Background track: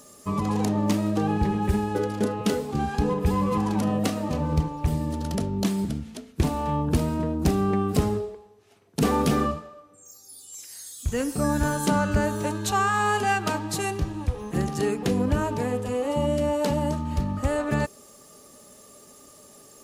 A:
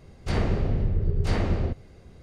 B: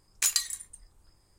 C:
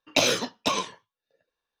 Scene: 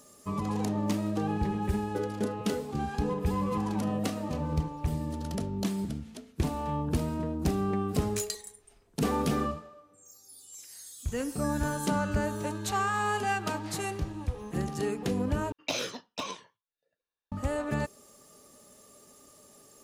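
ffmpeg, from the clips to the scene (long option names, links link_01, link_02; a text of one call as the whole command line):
ffmpeg -i bed.wav -i cue0.wav -i cue1.wav -i cue2.wav -filter_complex "[0:a]volume=-6dB[link_01];[1:a]highpass=920[link_02];[link_01]asplit=2[link_03][link_04];[link_03]atrim=end=15.524[link_05];[3:a]atrim=end=1.8,asetpts=PTS-STARTPTS,volume=-10.5dB[link_06];[link_04]atrim=start=17.316[link_07];[2:a]atrim=end=1.38,asetpts=PTS-STARTPTS,volume=-9.5dB,afade=type=in:duration=0.004:curve=hsin,afade=type=out:start_time=1.376:duration=0.004:curve=hsin,adelay=350154S[link_08];[link_02]atrim=end=2.22,asetpts=PTS-STARTPTS,volume=-12.5dB,afade=type=in:duration=0.004:curve=hsin,afade=type=out:start_time=2.216:duration=0.004:curve=hsin,adelay=12390[link_09];[link_05][link_06]acrossfade=duration=0.004:curve1=hsin:curve2=hsin[link_10];[link_10][link_07]acrossfade=duration=0.004:curve1=hsin:curve2=hsin[link_11];[link_11][link_08][link_09]amix=inputs=3:normalize=0" out.wav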